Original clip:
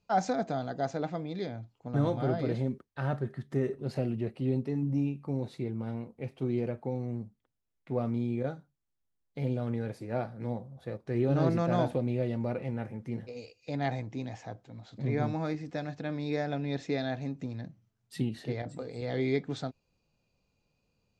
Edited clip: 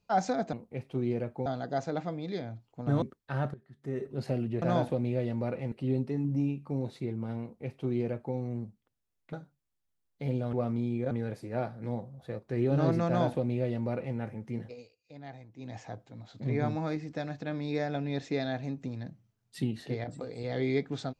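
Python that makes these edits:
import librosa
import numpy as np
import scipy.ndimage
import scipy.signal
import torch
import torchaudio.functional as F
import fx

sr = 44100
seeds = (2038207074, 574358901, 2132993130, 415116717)

y = fx.edit(x, sr, fx.cut(start_s=2.09, length_s=0.61),
    fx.fade_in_from(start_s=3.22, length_s=0.56, curve='qua', floor_db=-19.5),
    fx.duplicate(start_s=6.0, length_s=0.93, to_s=0.53),
    fx.move(start_s=7.91, length_s=0.58, to_s=9.69),
    fx.duplicate(start_s=11.65, length_s=1.1, to_s=4.3),
    fx.fade_down_up(start_s=13.25, length_s=1.1, db=-14.0, fade_s=0.21), tone=tone)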